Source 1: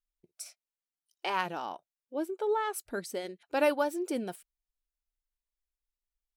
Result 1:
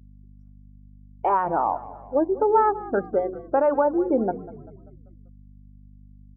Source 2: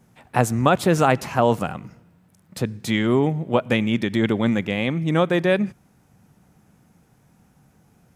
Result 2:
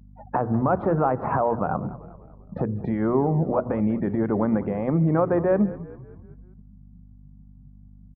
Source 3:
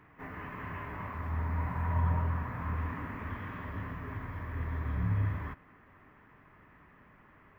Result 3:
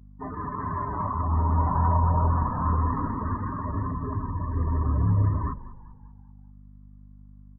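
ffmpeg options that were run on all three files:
ffmpeg -i in.wav -filter_complex "[0:a]afftdn=noise_reduction=36:noise_floor=-39,aeval=exprs='val(0)+0.00141*(sin(2*PI*50*n/s)+sin(2*PI*2*50*n/s)/2+sin(2*PI*3*50*n/s)/3+sin(2*PI*4*50*n/s)/4+sin(2*PI*5*50*n/s)/5)':channel_layout=same,acompressor=threshold=-28dB:ratio=3,alimiter=level_in=1dB:limit=-24dB:level=0:latency=1:release=66,volume=-1dB,lowpass=frequency=1300:width=0.5412,lowpass=frequency=1300:width=1.3066,equalizer=frequency=850:width=0.48:gain=6,acontrast=68,bandreject=frequency=60:width_type=h:width=6,bandreject=frequency=120:width_type=h:width=6,bandreject=frequency=180:width_type=h:width=6,bandreject=frequency=240:width_type=h:width=6,bandreject=frequency=300:width_type=h:width=6,bandreject=frequency=360:width_type=h:width=6,bandreject=frequency=420:width_type=h:width=6,bandreject=frequency=480:width_type=h:width=6,asplit=6[link_01][link_02][link_03][link_04][link_05][link_06];[link_02]adelay=195,afreqshift=-39,volume=-17dB[link_07];[link_03]adelay=390,afreqshift=-78,volume=-22.7dB[link_08];[link_04]adelay=585,afreqshift=-117,volume=-28.4dB[link_09];[link_05]adelay=780,afreqshift=-156,volume=-34dB[link_10];[link_06]adelay=975,afreqshift=-195,volume=-39.7dB[link_11];[link_01][link_07][link_08][link_09][link_10][link_11]amix=inputs=6:normalize=0,volume=3.5dB" out.wav

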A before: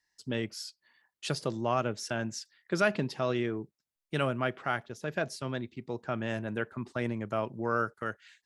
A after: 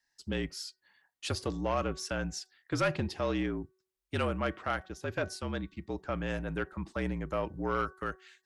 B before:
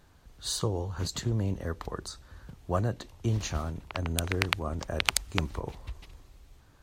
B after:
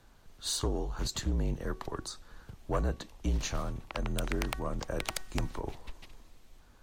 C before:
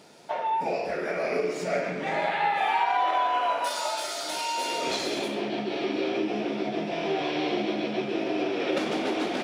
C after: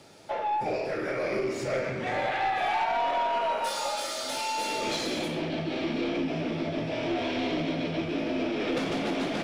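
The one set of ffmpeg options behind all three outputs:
ffmpeg -i in.wav -af "afreqshift=-48,bandreject=frequency=375:width_type=h:width=4,bandreject=frequency=750:width_type=h:width=4,bandreject=frequency=1125:width_type=h:width=4,bandreject=frequency=1500:width_type=h:width=4,bandreject=frequency=1875:width_type=h:width=4,aeval=exprs='(tanh(11.2*val(0)+0.1)-tanh(0.1))/11.2':channel_layout=same" out.wav

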